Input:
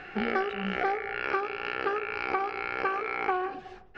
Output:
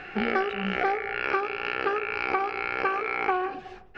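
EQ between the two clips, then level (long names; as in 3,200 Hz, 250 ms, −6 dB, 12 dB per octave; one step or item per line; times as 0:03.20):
parametric band 2,500 Hz +3 dB 0.3 octaves
+2.5 dB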